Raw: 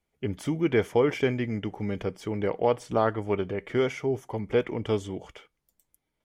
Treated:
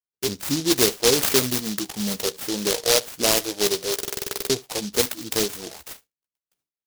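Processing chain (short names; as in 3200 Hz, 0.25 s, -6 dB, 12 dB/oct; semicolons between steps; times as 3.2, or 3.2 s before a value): high shelf 8500 Hz -8 dB; doubler 15 ms -9.5 dB; spectral delete 4.57–4.79, 340–1900 Hz; spectral noise reduction 12 dB; weighting filter D; gate with hold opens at -47 dBFS; in parallel at +2 dB: compressor, threshold -34 dBFS, peak gain reduction 16.5 dB; on the sum: tempo 0.91×; on a send: echo 72 ms -23.5 dB; on the sum: stuck buffer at 3.94, samples 2048, times 11; noise-modulated delay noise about 4600 Hz, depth 0.26 ms; gain +1.5 dB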